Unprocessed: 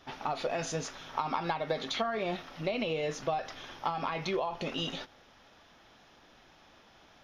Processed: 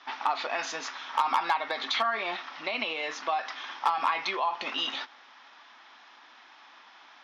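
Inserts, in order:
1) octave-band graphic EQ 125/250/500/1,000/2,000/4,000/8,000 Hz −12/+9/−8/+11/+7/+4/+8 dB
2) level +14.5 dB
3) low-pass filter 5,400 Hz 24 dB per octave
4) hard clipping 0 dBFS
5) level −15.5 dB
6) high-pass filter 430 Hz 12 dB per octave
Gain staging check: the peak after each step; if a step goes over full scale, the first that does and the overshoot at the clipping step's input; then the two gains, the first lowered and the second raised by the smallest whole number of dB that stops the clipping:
−7.5, +7.0, +7.0, 0.0, −15.5, −11.5 dBFS
step 2, 7.0 dB
step 2 +7.5 dB, step 5 −8.5 dB

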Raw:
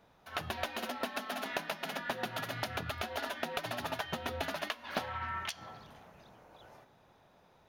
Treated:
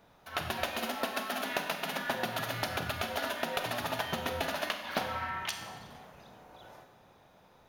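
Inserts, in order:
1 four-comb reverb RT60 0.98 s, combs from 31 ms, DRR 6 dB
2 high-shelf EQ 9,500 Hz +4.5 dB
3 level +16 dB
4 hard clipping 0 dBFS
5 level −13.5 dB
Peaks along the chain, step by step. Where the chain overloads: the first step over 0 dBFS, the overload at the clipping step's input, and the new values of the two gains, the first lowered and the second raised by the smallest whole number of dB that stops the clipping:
−21.0, −21.0, −5.0, −5.0, −18.5 dBFS
no step passes full scale

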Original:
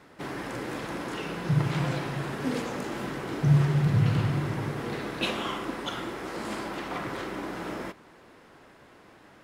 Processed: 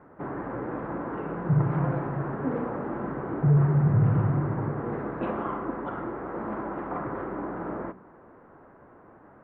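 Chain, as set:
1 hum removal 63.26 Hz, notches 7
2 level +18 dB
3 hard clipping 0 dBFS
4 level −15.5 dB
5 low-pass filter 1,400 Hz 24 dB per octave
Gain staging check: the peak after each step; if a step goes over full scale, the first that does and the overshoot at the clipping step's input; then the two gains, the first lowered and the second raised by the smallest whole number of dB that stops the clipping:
−11.5, +6.5, 0.0, −15.5, −15.0 dBFS
step 2, 6.5 dB
step 2 +11 dB, step 4 −8.5 dB

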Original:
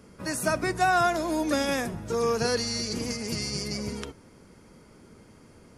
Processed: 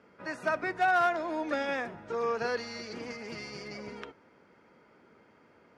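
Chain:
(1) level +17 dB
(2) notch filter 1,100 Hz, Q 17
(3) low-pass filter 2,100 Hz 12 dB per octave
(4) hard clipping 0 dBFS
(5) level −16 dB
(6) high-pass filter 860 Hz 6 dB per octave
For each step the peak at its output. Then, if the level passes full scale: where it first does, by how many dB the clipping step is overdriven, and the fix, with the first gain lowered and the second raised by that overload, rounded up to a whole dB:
+3.0, +3.5, +3.0, 0.0, −16.0, −16.0 dBFS
step 1, 3.0 dB
step 1 +14 dB, step 5 −13 dB

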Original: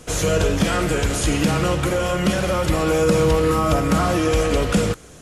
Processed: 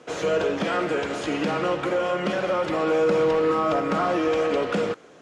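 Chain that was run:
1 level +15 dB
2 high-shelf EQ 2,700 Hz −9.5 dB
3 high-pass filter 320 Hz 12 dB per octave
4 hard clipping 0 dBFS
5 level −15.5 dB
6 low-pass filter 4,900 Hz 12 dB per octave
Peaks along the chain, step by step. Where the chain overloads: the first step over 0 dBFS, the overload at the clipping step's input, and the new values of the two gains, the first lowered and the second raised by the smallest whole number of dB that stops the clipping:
+9.5, +8.5, +5.0, 0.0, −15.5, −15.0 dBFS
step 1, 5.0 dB
step 1 +10 dB, step 5 −10.5 dB

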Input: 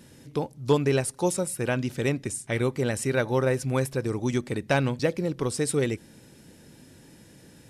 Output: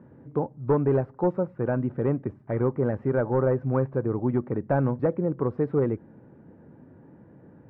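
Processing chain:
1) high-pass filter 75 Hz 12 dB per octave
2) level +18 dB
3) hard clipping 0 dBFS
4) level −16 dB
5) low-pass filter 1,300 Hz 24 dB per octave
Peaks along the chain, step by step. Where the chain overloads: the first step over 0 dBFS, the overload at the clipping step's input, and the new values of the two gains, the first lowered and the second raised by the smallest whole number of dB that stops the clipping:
−9.5, +8.5, 0.0, −16.0, −14.5 dBFS
step 2, 8.5 dB
step 2 +9 dB, step 4 −7 dB

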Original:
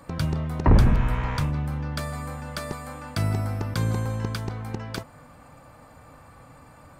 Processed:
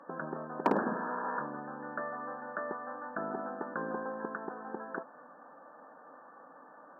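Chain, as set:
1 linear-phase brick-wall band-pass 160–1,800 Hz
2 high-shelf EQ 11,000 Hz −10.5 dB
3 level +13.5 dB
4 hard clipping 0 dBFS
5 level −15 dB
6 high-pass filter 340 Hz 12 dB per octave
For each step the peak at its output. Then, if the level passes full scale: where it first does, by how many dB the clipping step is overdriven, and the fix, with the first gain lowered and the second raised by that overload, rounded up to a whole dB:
−7.5, −7.5, +6.0, 0.0, −15.0, −13.0 dBFS
step 3, 6.0 dB
step 3 +7.5 dB, step 5 −9 dB

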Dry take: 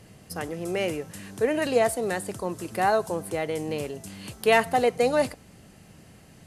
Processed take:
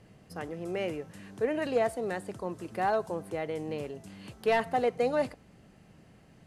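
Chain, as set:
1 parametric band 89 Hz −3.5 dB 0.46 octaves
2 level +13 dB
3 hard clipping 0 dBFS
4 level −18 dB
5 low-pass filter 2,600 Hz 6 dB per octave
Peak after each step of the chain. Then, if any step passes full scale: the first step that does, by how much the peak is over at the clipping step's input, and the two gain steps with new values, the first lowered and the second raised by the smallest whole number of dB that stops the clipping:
−7.0, +6.0, 0.0, −18.0, −18.0 dBFS
step 2, 6.0 dB
step 2 +7 dB, step 4 −12 dB

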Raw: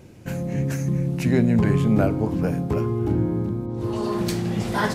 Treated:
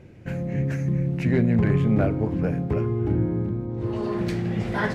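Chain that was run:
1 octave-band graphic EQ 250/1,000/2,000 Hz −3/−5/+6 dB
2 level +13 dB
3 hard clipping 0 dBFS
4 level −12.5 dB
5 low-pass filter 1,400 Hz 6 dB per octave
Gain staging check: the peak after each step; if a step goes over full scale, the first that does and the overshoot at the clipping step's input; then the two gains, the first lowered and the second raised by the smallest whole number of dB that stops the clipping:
−7.5, +5.5, 0.0, −12.5, −12.5 dBFS
step 2, 5.5 dB
step 2 +7 dB, step 4 −6.5 dB

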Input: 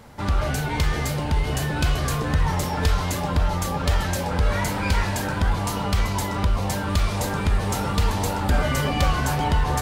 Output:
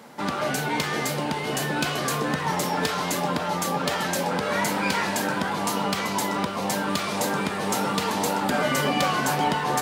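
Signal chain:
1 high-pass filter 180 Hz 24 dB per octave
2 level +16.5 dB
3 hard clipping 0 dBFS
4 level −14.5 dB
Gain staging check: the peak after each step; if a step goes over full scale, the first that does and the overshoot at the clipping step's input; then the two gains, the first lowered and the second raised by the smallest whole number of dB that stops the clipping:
−10.5, +6.0, 0.0, −14.5 dBFS
step 2, 6.0 dB
step 2 +10.5 dB, step 4 −8.5 dB

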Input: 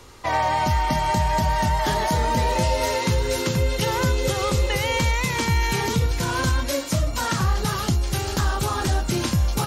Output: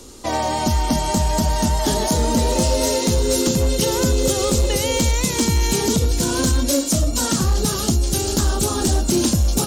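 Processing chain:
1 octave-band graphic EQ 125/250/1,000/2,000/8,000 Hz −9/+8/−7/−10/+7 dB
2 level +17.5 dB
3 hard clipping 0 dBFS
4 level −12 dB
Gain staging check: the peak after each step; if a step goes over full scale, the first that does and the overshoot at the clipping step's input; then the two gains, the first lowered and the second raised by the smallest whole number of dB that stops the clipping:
−8.0, +9.5, 0.0, −12.0 dBFS
step 2, 9.5 dB
step 2 +7.5 dB, step 4 −2 dB

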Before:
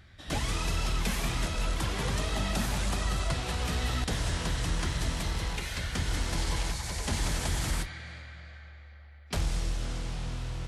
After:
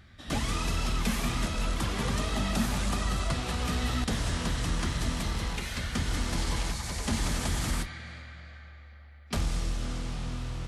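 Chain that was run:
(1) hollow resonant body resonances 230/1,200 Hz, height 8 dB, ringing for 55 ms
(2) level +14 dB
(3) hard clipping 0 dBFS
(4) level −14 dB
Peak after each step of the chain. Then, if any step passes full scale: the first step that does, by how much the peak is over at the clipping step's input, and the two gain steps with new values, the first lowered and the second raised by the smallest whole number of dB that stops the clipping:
−16.5, −2.5, −2.5, −16.5 dBFS
no step passes full scale

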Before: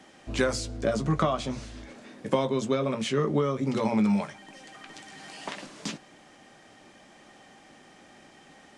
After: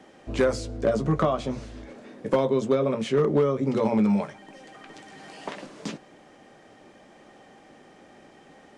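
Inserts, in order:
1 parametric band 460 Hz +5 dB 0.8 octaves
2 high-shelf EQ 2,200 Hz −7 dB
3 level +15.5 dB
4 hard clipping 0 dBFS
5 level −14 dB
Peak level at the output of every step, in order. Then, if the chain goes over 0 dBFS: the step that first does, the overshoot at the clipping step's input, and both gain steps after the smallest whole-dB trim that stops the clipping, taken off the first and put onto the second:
−8.5, −9.0, +6.5, 0.0, −14.0 dBFS
step 3, 6.5 dB
step 3 +8.5 dB, step 5 −7 dB

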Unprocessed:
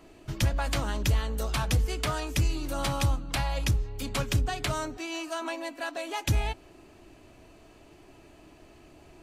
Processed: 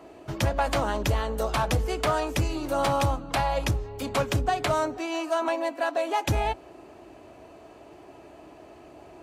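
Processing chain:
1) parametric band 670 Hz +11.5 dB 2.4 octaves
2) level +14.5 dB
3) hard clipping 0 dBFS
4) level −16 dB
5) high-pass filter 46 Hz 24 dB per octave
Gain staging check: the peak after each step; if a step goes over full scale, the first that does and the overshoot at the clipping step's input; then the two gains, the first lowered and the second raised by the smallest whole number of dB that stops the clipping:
−10.5, +4.0, 0.0, −16.0, −12.0 dBFS
step 2, 4.0 dB
step 2 +10.5 dB, step 4 −12 dB

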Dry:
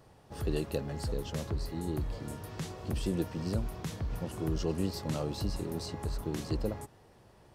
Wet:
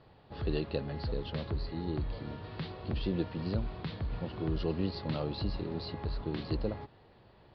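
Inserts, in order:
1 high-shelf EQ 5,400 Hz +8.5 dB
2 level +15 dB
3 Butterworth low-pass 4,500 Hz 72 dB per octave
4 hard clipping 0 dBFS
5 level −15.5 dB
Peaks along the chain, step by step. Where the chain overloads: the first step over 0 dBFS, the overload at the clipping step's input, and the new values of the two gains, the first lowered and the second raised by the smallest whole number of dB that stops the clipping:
−18.5, −3.5, −3.5, −3.5, −19.0 dBFS
no step passes full scale

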